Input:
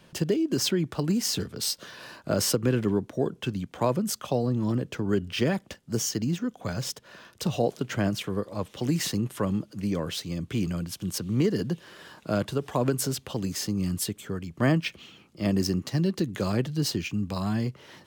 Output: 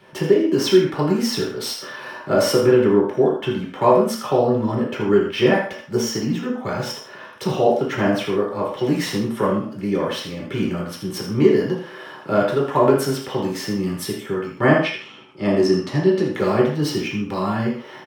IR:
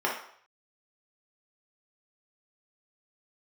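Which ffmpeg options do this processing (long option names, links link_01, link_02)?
-filter_complex "[0:a]asettb=1/sr,asplit=3[link_01][link_02][link_03];[link_01]atrim=end=14.644[link_04];[link_02]atrim=start=14.64:end=16.33,asetpts=PTS-STARTPTS,afade=type=in:duration=0.004:curve=qsin,afade=type=out:start_time=1.686:duration=0.004:curve=qsin,lowpass=10000[link_05];[link_03]atrim=start=16.326[link_06];[link_04][link_05]acrossfade=duration=0.004:curve1=hsin:curve2=qsin[link_07];[link_07][link_06]acrossfade=duration=0.004:curve1=qsin:curve2=hsin,aecho=1:1:80:0.316[link_08];[1:a]atrim=start_sample=2205,afade=type=out:start_time=0.22:duration=0.01,atrim=end_sample=10143[link_09];[link_08][link_09]afir=irnorm=-1:irlink=0,volume=-1.5dB"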